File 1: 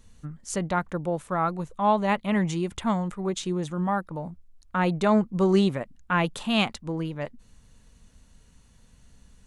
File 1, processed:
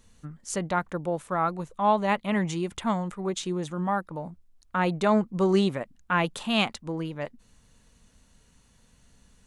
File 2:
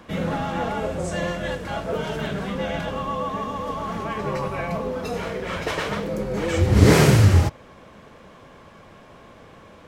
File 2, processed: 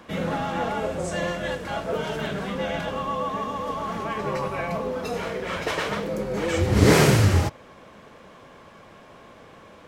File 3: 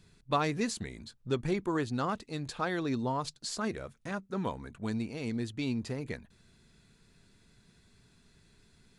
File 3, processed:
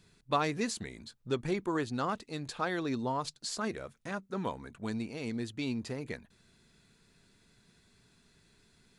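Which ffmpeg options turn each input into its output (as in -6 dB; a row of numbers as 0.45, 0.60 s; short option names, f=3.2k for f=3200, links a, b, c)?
-af "lowshelf=f=150:g=-6.5"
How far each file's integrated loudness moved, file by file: -1.0, -2.0, -1.0 LU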